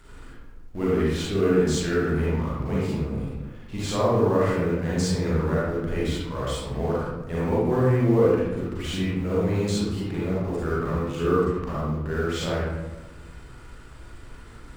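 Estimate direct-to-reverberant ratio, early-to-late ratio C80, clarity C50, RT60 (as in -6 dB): -7.5 dB, 0.5 dB, -3.5 dB, 1.1 s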